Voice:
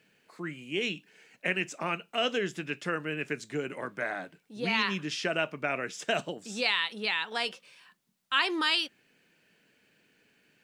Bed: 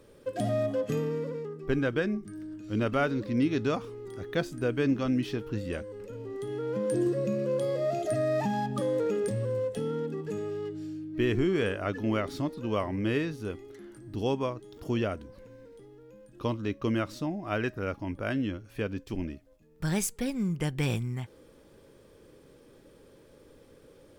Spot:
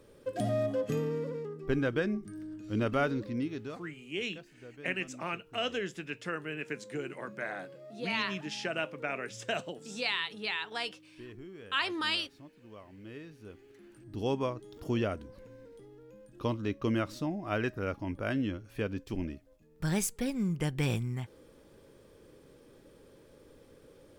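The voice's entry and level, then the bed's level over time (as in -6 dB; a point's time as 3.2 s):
3.40 s, -4.5 dB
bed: 3.12 s -2 dB
4.1 s -21 dB
12.89 s -21 dB
14.37 s -1.5 dB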